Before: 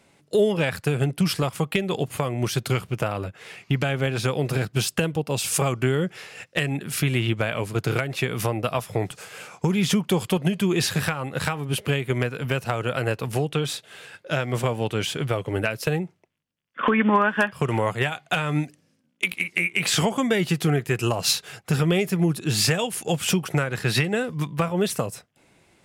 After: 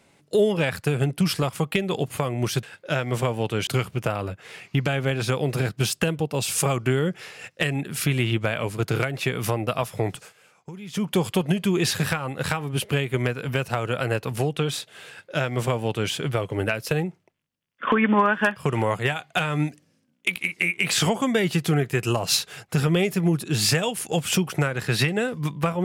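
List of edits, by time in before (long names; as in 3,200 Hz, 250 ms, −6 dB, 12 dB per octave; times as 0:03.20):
0:09.14–0:10.03: duck −16.5 dB, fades 0.15 s
0:14.04–0:15.08: duplicate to 0:02.63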